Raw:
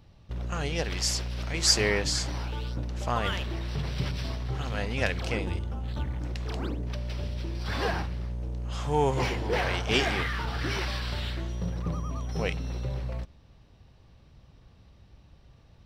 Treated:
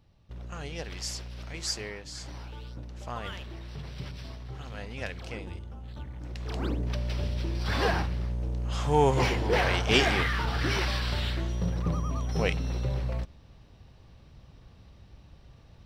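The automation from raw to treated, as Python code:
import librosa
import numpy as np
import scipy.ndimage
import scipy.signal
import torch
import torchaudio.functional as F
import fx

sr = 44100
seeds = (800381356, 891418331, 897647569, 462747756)

y = fx.gain(x, sr, db=fx.line((1.53, -7.5), (2.04, -16.0), (2.29, -8.5), (6.12, -8.5), (6.71, 2.5)))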